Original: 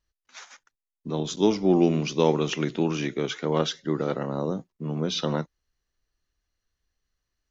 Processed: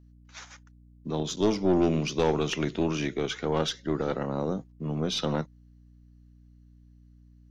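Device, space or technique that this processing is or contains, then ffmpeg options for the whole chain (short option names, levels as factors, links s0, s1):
valve amplifier with mains hum: -af "aeval=exprs='(tanh(6.31*val(0)+0.3)-tanh(0.3))/6.31':c=same,aeval=exprs='val(0)+0.00224*(sin(2*PI*60*n/s)+sin(2*PI*2*60*n/s)/2+sin(2*PI*3*60*n/s)/3+sin(2*PI*4*60*n/s)/4+sin(2*PI*5*60*n/s)/5)':c=same"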